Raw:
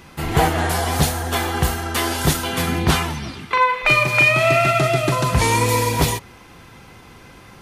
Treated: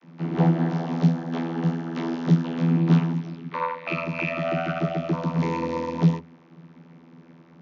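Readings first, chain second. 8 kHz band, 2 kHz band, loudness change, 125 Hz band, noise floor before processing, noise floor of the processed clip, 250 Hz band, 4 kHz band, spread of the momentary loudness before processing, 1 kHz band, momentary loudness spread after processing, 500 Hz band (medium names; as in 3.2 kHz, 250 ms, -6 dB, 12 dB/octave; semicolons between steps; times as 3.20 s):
under -25 dB, -15.5 dB, -6.5 dB, -2.0 dB, -44 dBFS, -52 dBFS, +2.5 dB, -18.5 dB, 8 LU, -11.5 dB, 8 LU, -8.5 dB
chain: steep low-pass 6.3 kHz 96 dB/octave; peaking EQ 200 Hz +8 dB 1.3 oct; vocoder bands 32, saw 83.1 Hz; trim -6 dB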